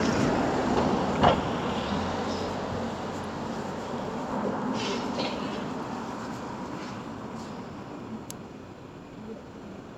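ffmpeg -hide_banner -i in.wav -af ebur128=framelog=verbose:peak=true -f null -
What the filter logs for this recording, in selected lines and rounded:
Integrated loudness:
  I:         -30.2 LUFS
  Threshold: -40.8 LUFS
Loudness range:
  LRA:        11.2 LU
  Threshold: -51.8 LUFS
  LRA low:   -38.8 LUFS
  LRA high:  -27.5 LUFS
True peak:
  Peak:       -5.8 dBFS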